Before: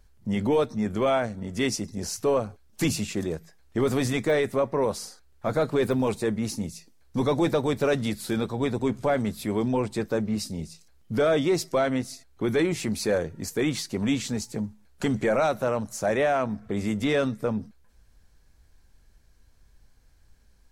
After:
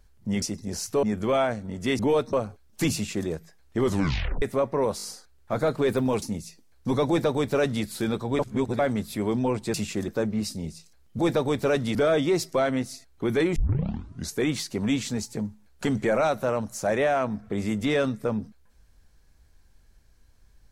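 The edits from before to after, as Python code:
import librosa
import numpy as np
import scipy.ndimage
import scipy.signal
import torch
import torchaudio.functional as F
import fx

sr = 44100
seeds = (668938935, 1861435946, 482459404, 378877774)

y = fx.edit(x, sr, fx.swap(start_s=0.42, length_s=0.34, other_s=1.72, other_length_s=0.61),
    fx.duplicate(start_s=2.94, length_s=0.34, to_s=10.03),
    fx.tape_stop(start_s=3.82, length_s=0.6),
    fx.stutter(start_s=4.97, slice_s=0.02, count=4),
    fx.cut(start_s=6.16, length_s=0.35),
    fx.duplicate(start_s=7.37, length_s=0.76, to_s=11.14),
    fx.reverse_span(start_s=8.68, length_s=0.4),
    fx.tape_start(start_s=12.75, length_s=0.81), tone=tone)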